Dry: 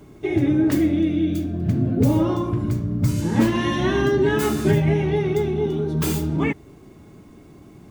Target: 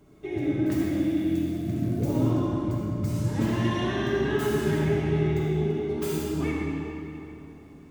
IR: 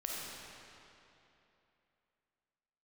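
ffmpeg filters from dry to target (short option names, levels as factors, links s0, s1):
-filter_complex "[1:a]atrim=start_sample=2205[s0];[0:a][s0]afir=irnorm=-1:irlink=0,asettb=1/sr,asplit=3[s1][s2][s3];[s1]atrim=end=0.664[s4];[s2]atrim=start=0.66:end=2.31,asetpts=PTS-STARTPTS,afade=t=in:d=0.004:c=qsin,afade=t=out:st=1.646:d=0.004:c=qsin,acrusher=bits=8:dc=4:mix=0:aa=0.000001[s5];[s3]atrim=start=2.306[s6];[s4][s5]acrossfade=d=0.004:c1=hsin:c2=qsin[s7];[s7][s6]acrossfade=d=0.004:c1=qsin:c2=hsin,volume=0.398"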